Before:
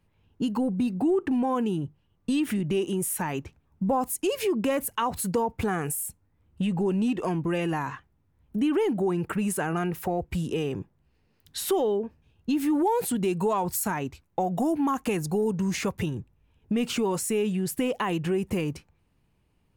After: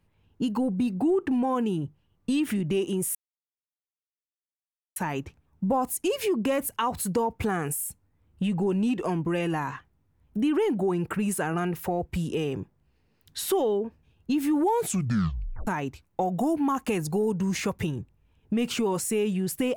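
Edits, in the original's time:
3.15 s: insert silence 1.81 s
12.96 s: tape stop 0.90 s

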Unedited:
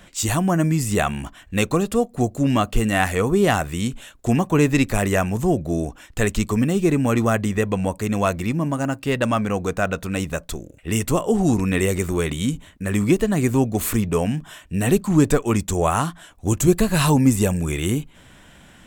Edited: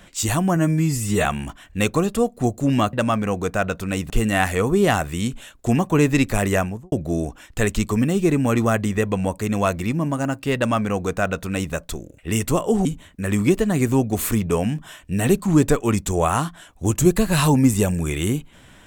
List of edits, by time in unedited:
0.56–1.02 s: stretch 1.5×
5.15–5.52 s: studio fade out
9.16–10.33 s: copy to 2.70 s
11.45–12.47 s: delete

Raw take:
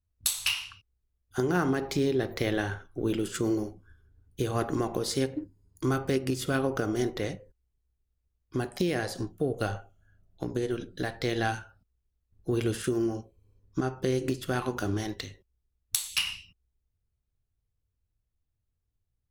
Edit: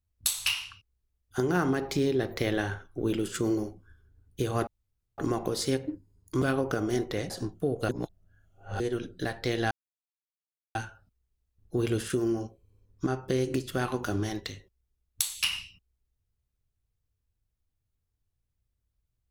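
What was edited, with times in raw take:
4.67 s: insert room tone 0.51 s
5.91–6.48 s: delete
7.36–9.08 s: delete
9.67–10.58 s: reverse
11.49 s: insert silence 1.04 s

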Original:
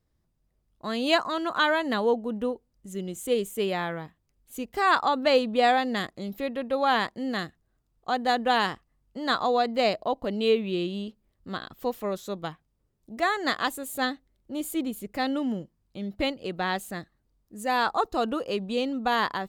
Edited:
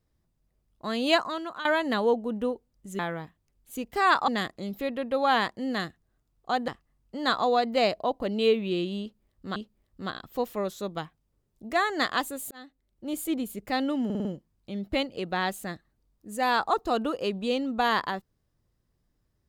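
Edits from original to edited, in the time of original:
1.15–1.65 s: fade out, to -16.5 dB
2.99–3.80 s: delete
5.09–5.87 s: delete
8.27–8.70 s: delete
11.03–11.58 s: loop, 2 plays
13.98–14.63 s: fade in
15.52 s: stutter 0.05 s, 5 plays

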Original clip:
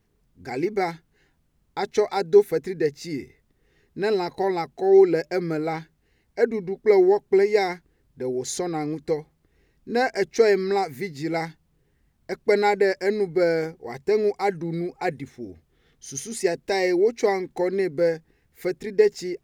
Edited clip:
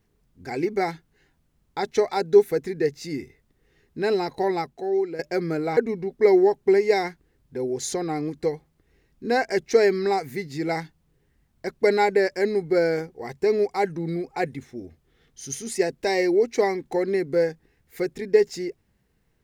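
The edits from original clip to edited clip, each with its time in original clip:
4.60–5.19 s: fade out quadratic, to -12 dB
5.77–6.42 s: delete

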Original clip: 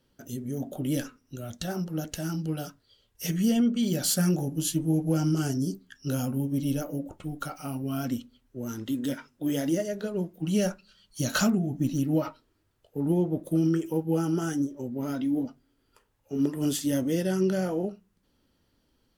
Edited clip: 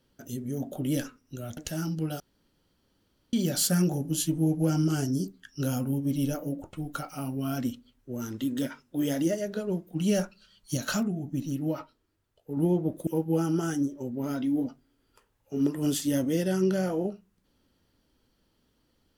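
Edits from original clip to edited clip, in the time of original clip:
1.57–2.04 s: delete
2.67–3.80 s: room tone
11.24–13.04 s: gain -4.5 dB
13.54–13.86 s: delete

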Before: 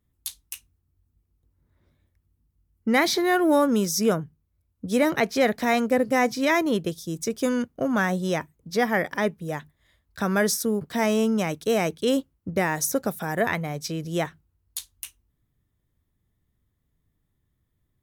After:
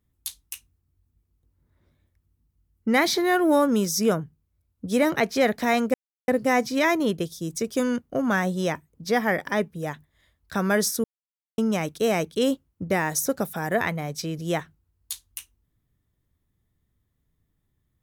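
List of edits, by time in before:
5.94 s: insert silence 0.34 s
10.70–11.24 s: mute

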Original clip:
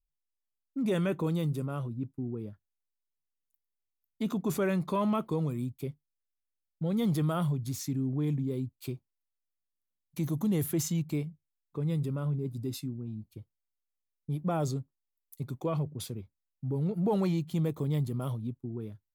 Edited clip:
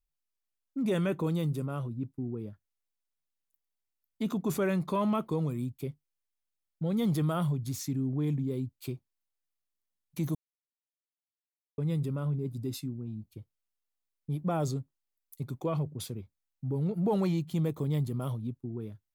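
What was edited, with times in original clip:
10.35–11.78 s: mute

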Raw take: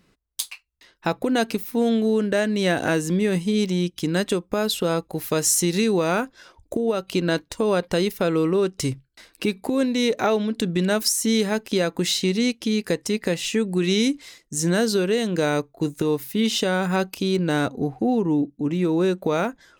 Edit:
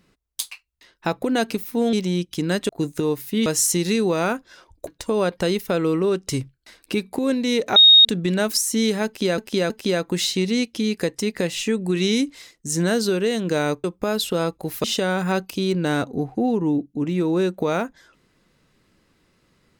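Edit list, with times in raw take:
1.93–3.58 s: delete
4.34–5.34 s: swap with 15.71–16.48 s
6.75–7.38 s: delete
10.27–10.56 s: bleep 3.73 kHz -7 dBFS
11.57–11.89 s: loop, 3 plays

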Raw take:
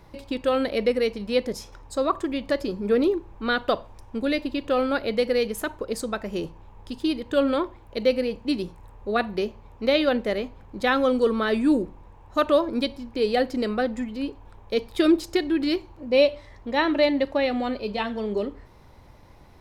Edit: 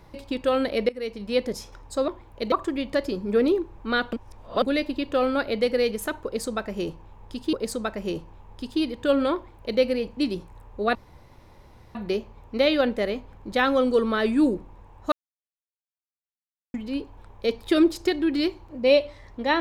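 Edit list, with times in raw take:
0.89–1.54 s: fade in equal-power, from -20 dB
3.69–4.18 s: reverse
5.81–7.09 s: loop, 2 plays
7.63–8.07 s: copy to 2.08 s
9.23 s: insert room tone 1.00 s
12.40–14.02 s: mute

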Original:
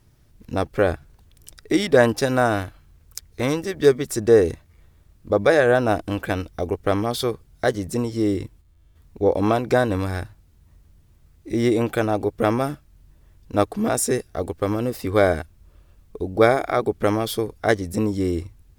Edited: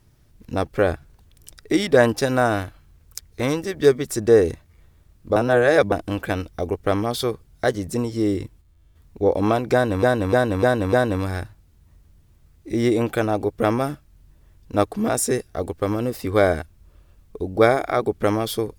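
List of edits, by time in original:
5.36–5.92 s: reverse
9.73–10.03 s: loop, 5 plays

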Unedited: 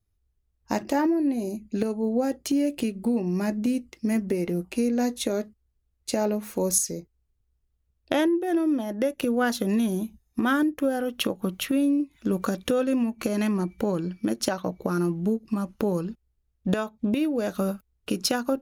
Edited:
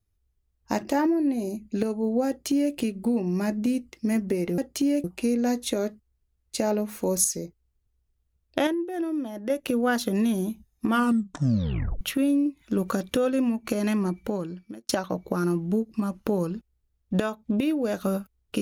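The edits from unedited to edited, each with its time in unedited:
2.28–2.74 s: copy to 4.58 s
8.21–9.04 s: gain -5 dB
10.40 s: tape stop 1.15 s
13.64–14.43 s: fade out

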